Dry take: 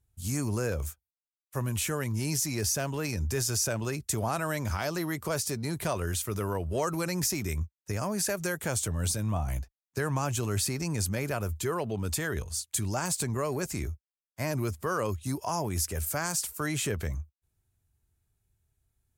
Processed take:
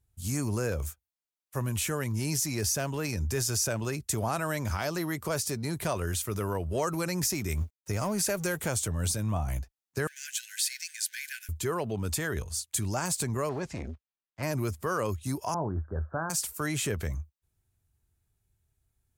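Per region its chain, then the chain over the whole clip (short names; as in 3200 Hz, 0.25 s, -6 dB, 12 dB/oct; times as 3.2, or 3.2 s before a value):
7.5–8.69 G.711 law mismatch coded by mu + notch 1700 Hz, Q 16
10.07–11.49 zero-crossing step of -42 dBFS + Chebyshev high-pass 1500 Hz, order 10 + dynamic EQ 3900 Hz, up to +4 dB, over -46 dBFS, Q 1.9
13.49–14.43 block floating point 5-bit + LPF 4000 Hz + core saturation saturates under 510 Hz
15.54–16.3 steep low-pass 1600 Hz 96 dB/oct + doubler 25 ms -13.5 dB
whole clip: dry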